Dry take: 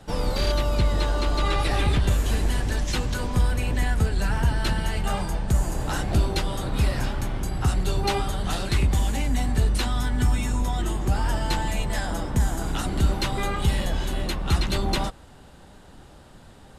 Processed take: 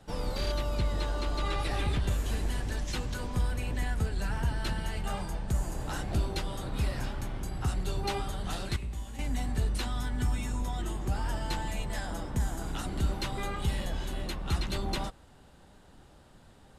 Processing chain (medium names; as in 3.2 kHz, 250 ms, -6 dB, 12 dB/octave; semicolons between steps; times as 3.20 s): 8.76–9.19 s: feedback comb 58 Hz, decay 0.91 s, harmonics all, mix 80%; trim -8 dB